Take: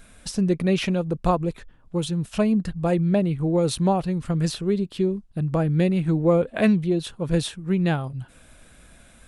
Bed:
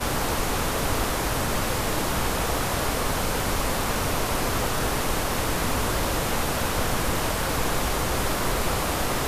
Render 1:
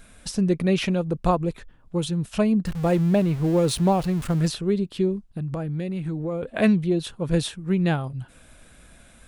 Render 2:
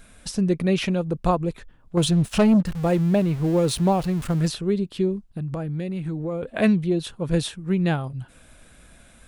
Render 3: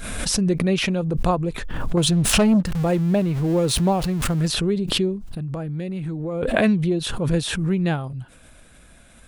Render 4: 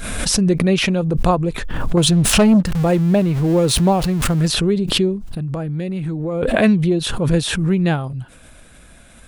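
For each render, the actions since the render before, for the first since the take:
2.66–4.48 s: jump at every zero crossing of -33 dBFS; 5.27–6.43 s: compression 4:1, threshold -26 dBFS
1.97–2.63 s: waveshaping leveller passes 2
swell ahead of each attack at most 34 dB/s
trim +4.5 dB; peak limiter -3 dBFS, peak gain reduction 3 dB

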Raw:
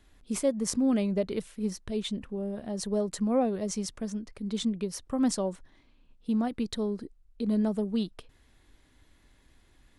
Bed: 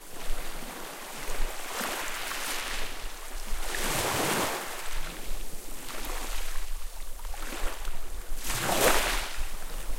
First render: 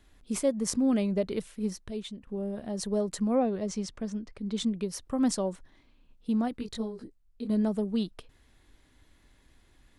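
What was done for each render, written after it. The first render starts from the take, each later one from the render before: 1.63–2.27 s: fade out, to -13 dB; 3.35–4.58 s: distance through air 65 m; 6.57–7.50 s: detune thickener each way 16 cents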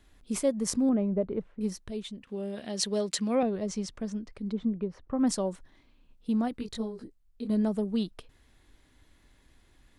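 0.89–1.61 s: low-pass 1.1 kHz; 2.23–3.43 s: frequency weighting D; 4.51–5.26 s: low-pass 1 kHz -> 2.2 kHz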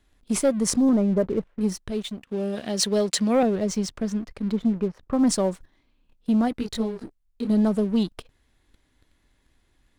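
waveshaping leveller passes 2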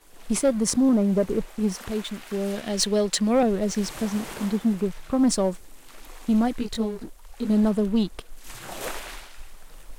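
add bed -10 dB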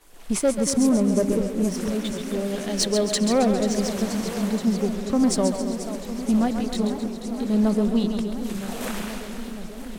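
two-band feedback delay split 470 Hz, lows 230 ms, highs 135 ms, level -7.5 dB; modulated delay 481 ms, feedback 79%, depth 209 cents, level -12.5 dB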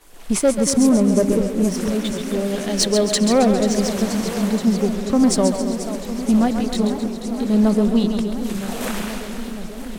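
trim +4.5 dB

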